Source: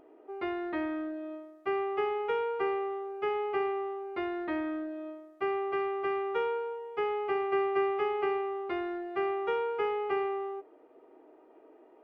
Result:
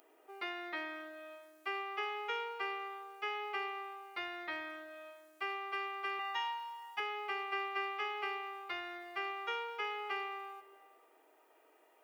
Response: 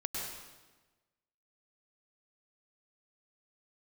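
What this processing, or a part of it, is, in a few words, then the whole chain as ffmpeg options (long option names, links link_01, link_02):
ducked reverb: -filter_complex "[0:a]asplit=3[link_01][link_02][link_03];[1:a]atrim=start_sample=2205[link_04];[link_02][link_04]afir=irnorm=-1:irlink=0[link_05];[link_03]apad=whole_len=530837[link_06];[link_05][link_06]sidechaincompress=threshold=-37dB:ratio=8:attack=16:release=641,volume=-9dB[link_07];[link_01][link_07]amix=inputs=2:normalize=0,aderivative,asettb=1/sr,asplit=3[link_08][link_09][link_10];[link_08]atrim=end=6.194[link_11];[link_09]atrim=start=6.19:end=7,asetpts=PTS-STARTPTS,afade=type=in:duration=0.004:curve=qsin,afade=type=out:start_time=0.806:duration=0.004:curve=qsin,aecho=1:1:1.1:0.98,atrim=end_sample=35721[link_12];[link_10]atrim=start=6.996[link_13];[link_11][link_12]acrossfade=duration=0.004:curve1=hsin:curve2=qsin[link_14];[link_14][link_13]acrossfade=duration=0.004:curve1=qsin:curve2=hsin,asubboost=boost=8:cutoff=90,volume=11dB"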